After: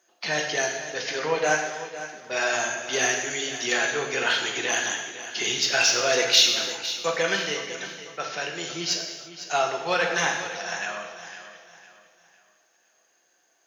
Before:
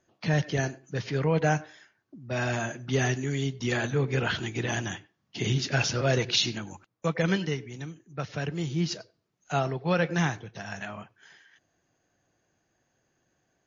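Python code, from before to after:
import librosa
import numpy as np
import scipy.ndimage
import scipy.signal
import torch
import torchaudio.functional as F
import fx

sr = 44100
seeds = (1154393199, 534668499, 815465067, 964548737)

p1 = scipy.signal.sosfilt(scipy.signal.butter(2, 520.0, 'highpass', fs=sr, output='sos'), x)
p2 = fx.high_shelf(p1, sr, hz=3800.0, db=8.5)
p3 = 10.0 ** (-22.0 / 20.0) * np.tanh(p2 / 10.0 ** (-22.0 / 20.0))
p4 = p2 + (p3 * librosa.db_to_amplitude(-5.0))
p5 = fx.echo_feedback(p4, sr, ms=505, feedback_pct=36, wet_db=-13.0)
y = fx.rev_gated(p5, sr, seeds[0], gate_ms=370, shape='falling', drr_db=1.5)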